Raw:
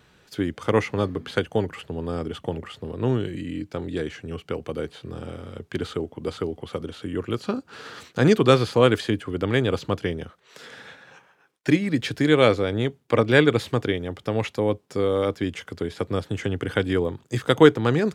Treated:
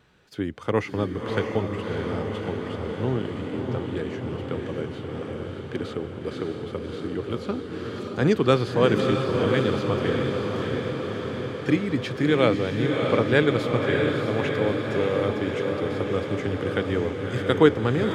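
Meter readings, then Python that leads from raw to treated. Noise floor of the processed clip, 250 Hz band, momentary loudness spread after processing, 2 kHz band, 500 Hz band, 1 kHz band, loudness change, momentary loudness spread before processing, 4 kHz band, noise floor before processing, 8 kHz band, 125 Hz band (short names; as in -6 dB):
-36 dBFS, -0.5 dB, 12 LU, -1.0 dB, -1.0 dB, -1.0 dB, -1.5 dB, 16 LU, -2.5 dB, -60 dBFS, n/a, -0.5 dB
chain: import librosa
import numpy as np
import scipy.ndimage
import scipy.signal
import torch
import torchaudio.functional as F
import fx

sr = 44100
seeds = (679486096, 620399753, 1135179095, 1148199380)

p1 = fx.high_shelf(x, sr, hz=5200.0, db=-7.0)
p2 = p1 + fx.echo_diffused(p1, sr, ms=630, feedback_pct=71, wet_db=-3.5, dry=0)
y = p2 * 10.0 ** (-3.0 / 20.0)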